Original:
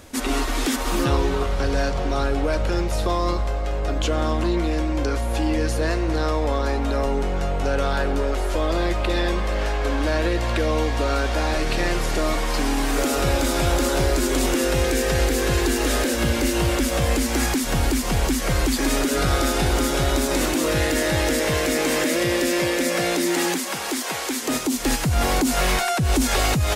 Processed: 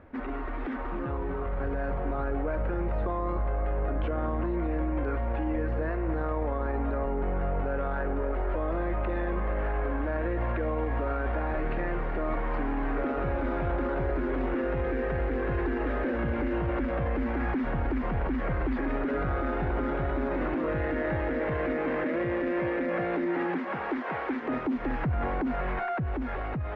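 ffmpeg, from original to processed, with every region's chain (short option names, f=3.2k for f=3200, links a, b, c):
-filter_complex "[0:a]asettb=1/sr,asplit=3[a][b][c];[a]atrim=end=4.944[d];[b]atrim=start=4.94:end=5.46,asetpts=PTS-STARTPTS,afade=t=in:d=0.004:c=qsin,afade=t=out:st=0.516:d=0.004:c=qsin,lowpass=3.4k,aemphasis=mode=production:type=75fm[e];[c]atrim=start=5.456[f];[d][e]acrossfade=d=0.004:c1=hsin:c2=qsin[g];[g][f]acrossfade=d=0.004:c1=qsin:c2=hsin,lowpass=f=1.9k:w=0.5412,lowpass=f=1.9k:w=1.3066,alimiter=limit=-20dB:level=0:latency=1:release=22,dynaudnorm=f=450:g=7:m=4.5dB,volume=-6.5dB"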